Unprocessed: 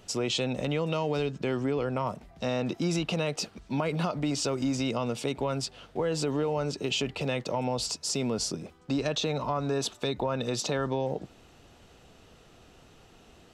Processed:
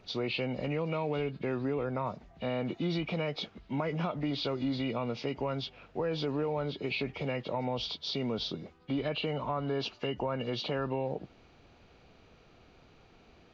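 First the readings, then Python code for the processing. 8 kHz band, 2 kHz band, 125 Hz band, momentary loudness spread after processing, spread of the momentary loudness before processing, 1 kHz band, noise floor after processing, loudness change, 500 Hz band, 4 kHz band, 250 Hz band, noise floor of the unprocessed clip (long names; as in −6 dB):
below −20 dB, −2.5 dB, −3.5 dB, 4 LU, 4 LU, −3.5 dB, −60 dBFS, −4.0 dB, −3.5 dB, −4.0 dB, −3.5 dB, −57 dBFS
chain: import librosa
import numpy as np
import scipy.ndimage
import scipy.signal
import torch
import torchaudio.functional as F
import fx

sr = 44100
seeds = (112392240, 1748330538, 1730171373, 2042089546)

y = fx.freq_compress(x, sr, knee_hz=1700.0, ratio=1.5)
y = y * librosa.db_to_amplitude(-3.5)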